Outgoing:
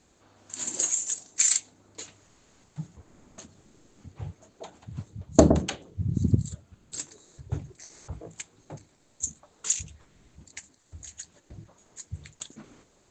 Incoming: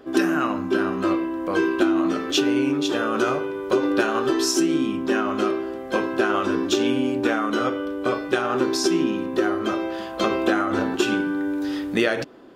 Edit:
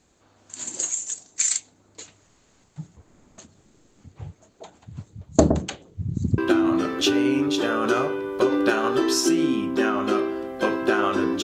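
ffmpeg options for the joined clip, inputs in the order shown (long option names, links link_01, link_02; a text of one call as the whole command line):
ffmpeg -i cue0.wav -i cue1.wav -filter_complex "[0:a]apad=whole_dur=11.43,atrim=end=11.43,atrim=end=6.382[link_01];[1:a]atrim=start=1.688:end=6.74[link_02];[link_01][link_02]acrossfade=duration=0.004:curve1=hsin:curve2=hsin,asplit=2[link_03][link_04];[link_04]afade=type=in:start_time=5.92:duration=0.01,afade=type=out:start_time=6.38:duration=0.01,aecho=0:1:380|760|1140|1520|1900|2280:0.133352|0.0800113|0.0480068|0.0288041|0.0172824|0.0103695[link_05];[link_03][link_05]amix=inputs=2:normalize=0" out.wav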